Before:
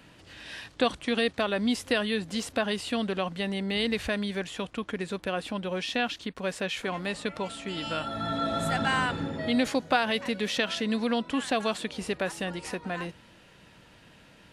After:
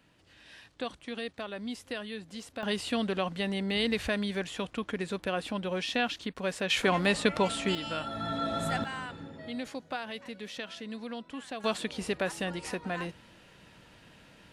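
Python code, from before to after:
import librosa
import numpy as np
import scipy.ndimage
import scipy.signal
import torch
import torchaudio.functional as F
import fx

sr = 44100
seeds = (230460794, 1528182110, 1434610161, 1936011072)

y = fx.gain(x, sr, db=fx.steps((0.0, -11.0), (2.63, -1.0), (6.7, 6.0), (7.75, -3.0), (8.84, -12.0), (11.64, -1.0)))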